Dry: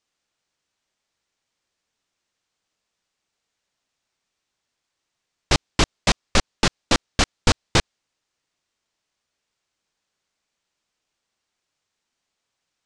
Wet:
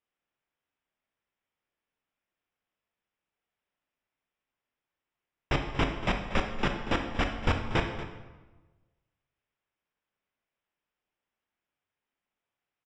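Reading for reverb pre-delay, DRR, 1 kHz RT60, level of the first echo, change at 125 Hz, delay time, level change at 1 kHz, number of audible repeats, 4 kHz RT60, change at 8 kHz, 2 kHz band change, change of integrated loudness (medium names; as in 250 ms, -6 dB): 14 ms, 3.5 dB, 1.1 s, -14.5 dB, -6.0 dB, 235 ms, -6.0 dB, 1, 0.85 s, -24.5 dB, -7.0 dB, -9.0 dB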